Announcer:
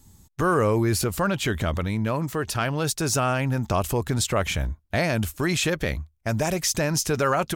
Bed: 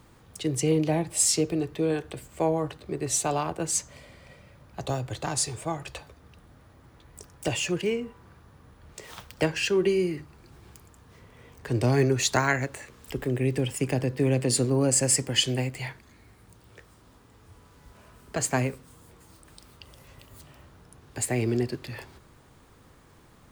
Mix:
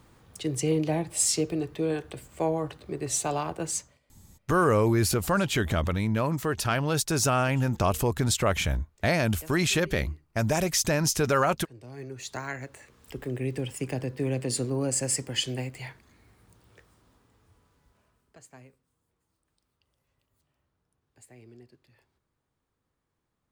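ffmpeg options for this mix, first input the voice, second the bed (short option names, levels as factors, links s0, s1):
-filter_complex "[0:a]adelay=4100,volume=0.891[s0];[1:a]volume=6.31,afade=t=out:st=3.67:d=0.32:silence=0.0891251,afade=t=in:st=11.87:d=1.47:silence=0.125893,afade=t=out:st=16.58:d=1.83:silence=0.0944061[s1];[s0][s1]amix=inputs=2:normalize=0"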